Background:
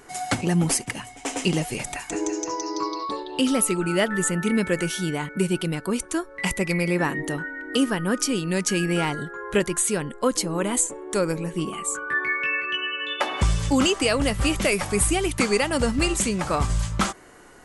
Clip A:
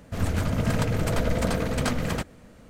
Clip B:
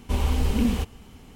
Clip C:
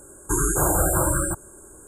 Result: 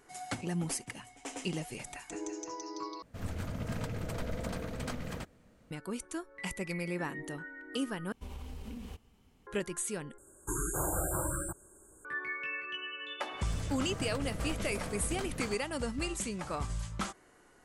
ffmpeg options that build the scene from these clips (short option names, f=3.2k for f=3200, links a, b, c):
-filter_complex "[1:a]asplit=2[a][b];[0:a]volume=-13dB[c];[2:a]acompressor=threshold=-25dB:ratio=6:attack=38:release=84:knee=1:detection=peak[d];[c]asplit=4[e][f][g][h];[e]atrim=end=3.024[i];[a]atrim=end=2.69,asetpts=PTS-STARTPTS,volume=-12.5dB[j];[f]atrim=start=5.706:end=8.124[k];[d]atrim=end=1.35,asetpts=PTS-STARTPTS,volume=-18dB[l];[g]atrim=start=9.466:end=10.184[m];[3:a]atrim=end=1.87,asetpts=PTS-STARTPTS,volume=-12.5dB[n];[h]atrim=start=12.046[o];[b]atrim=end=2.69,asetpts=PTS-STARTPTS,volume=-15dB,afade=t=in:d=0.004:c=hsin,afade=t=out:st=2.686:d=0.004:c=hsin,adelay=13330[p];[i][j]acrossfade=d=0.004:c1=hsin:c2=hsin[q];[q][k]acrossfade=d=0.004:c1=hsin:c2=hsin[r];[r][l]acrossfade=d=0.004:c1=hsin:c2=hsin[s];[s][m]acrossfade=d=0.004:c1=hsin:c2=hsin[t];[t][n]acrossfade=d=0.004:c1=hsin:c2=hsin[u];[u][o]acrossfade=d=0.004:c1=hsin:c2=hsin[v];[v][p]amix=inputs=2:normalize=0"